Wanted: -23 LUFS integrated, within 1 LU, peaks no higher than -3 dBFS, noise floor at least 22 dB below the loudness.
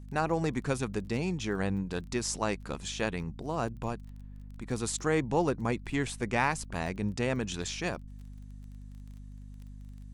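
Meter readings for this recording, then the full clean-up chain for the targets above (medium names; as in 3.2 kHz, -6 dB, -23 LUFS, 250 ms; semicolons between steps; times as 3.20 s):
tick rate 22 per s; hum 50 Hz; highest harmonic 250 Hz; hum level -43 dBFS; loudness -32.5 LUFS; peak level -13.0 dBFS; loudness target -23.0 LUFS
-> de-click; hum notches 50/100/150/200/250 Hz; trim +9.5 dB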